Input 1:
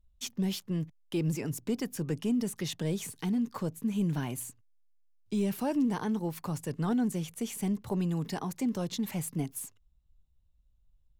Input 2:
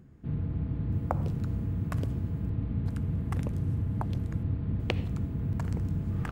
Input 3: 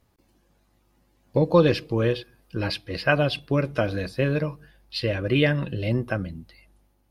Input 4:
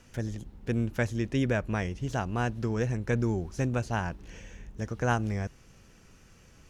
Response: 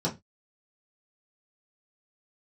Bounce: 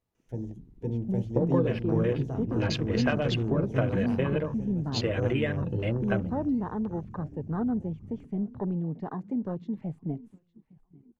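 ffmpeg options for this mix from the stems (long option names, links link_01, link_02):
-filter_complex "[0:a]lowpass=2100,adelay=700,volume=0dB,asplit=2[link_01][link_02];[link_02]volume=-21dB[link_03];[1:a]adelay=1950,volume=-16.5dB[link_04];[2:a]acompressor=threshold=-23dB:ratio=12,volume=-1dB,asplit=2[link_05][link_06];[link_06]volume=-21.5dB[link_07];[3:a]acrossover=split=400|3000[link_08][link_09][link_10];[link_09]acompressor=threshold=-40dB:ratio=6[link_11];[link_08][link_11][link_10]amix=inputs=3:normalize=0,adelay=150,volume=-4dB,asplit=3[link_12][link_13][link_14];[link_13]volume=-14.5dB[link_15];[link_14]volume=-7dB[link_16];[4:a]atrim=start_sample=2205[link_17];[link_07][link_15]amix=inputs=2:normalize=0[link_18];[link_18][link_17]afir=irnorm=-1:irlink=0[link_19];[link_03][link_16]amix=inputs=2:normalize=0,aecho=0:1:858|1716|2574|3432|4290|5148:1|0.44|0.194|0.0852|0.0375|0.0165[link_20];[link_01][link_04][link_05][link_12][link_19][link_20]amix=inputs=6:normalize=0,afwtdn=0.0112"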